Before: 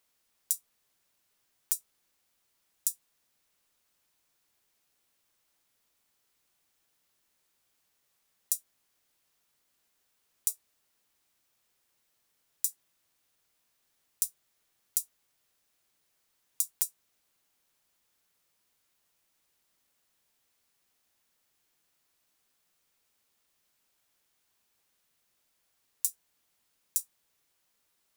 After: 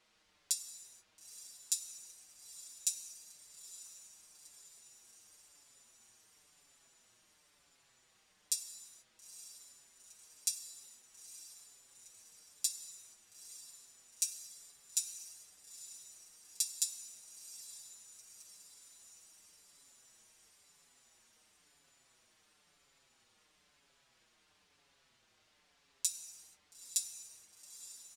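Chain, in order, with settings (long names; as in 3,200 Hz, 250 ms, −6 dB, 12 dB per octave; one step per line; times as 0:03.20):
low-pass filter 4,900 Hz 12 dB per octave
on a send: feedback delay with all-pass diffusion 913 ms, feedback 59%, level −13 dB
on the sum: reverb whose tail is shaped and stops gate 500 ms falling, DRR 8.5 dB
barber-pole flanger 5.8 ms −0.99 Hz
level +11.5 dB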